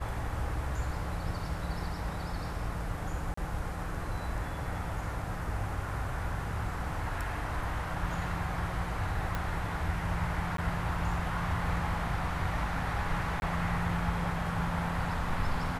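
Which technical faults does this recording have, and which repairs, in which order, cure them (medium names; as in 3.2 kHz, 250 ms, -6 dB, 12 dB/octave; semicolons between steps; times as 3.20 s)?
3.34–3.37 s: dropout 34 ms
9.35 s: pop -19 dBFS
10.57–10.58 s: dropout 13 ms
13.40–13.42 s: dropout 21 ms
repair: de-click; interpolate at 3.34 s, 34 ms; interpolate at 10.57 s, 13 ms; interpolate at 13.40 s, 21 ms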